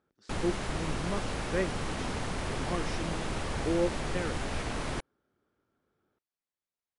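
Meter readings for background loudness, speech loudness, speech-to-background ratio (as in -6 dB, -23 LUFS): -35.5 LUFS, -36.0 LUFS, -0.5 dB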